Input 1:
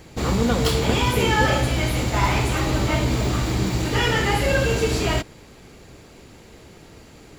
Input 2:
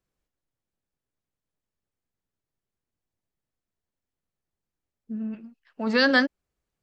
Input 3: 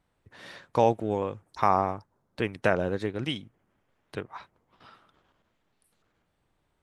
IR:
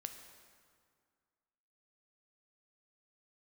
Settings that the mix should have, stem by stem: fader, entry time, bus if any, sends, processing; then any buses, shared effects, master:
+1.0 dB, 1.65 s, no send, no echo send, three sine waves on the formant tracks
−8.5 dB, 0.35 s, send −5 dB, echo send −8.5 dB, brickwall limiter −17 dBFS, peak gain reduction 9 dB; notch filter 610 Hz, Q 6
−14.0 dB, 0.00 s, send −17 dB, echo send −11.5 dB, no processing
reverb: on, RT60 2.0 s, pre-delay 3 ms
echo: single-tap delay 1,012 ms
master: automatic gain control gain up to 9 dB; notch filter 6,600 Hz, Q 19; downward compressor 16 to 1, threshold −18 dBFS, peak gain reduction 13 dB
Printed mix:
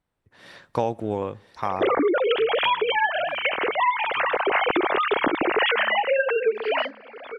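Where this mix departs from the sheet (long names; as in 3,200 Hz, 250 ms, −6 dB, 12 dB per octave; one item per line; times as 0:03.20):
stem 1 +1.0 dB → +12.5 dB
stem 2: entry 0.35 s → 0.65 s
stem 3 −14.0 dB → −7.0 dB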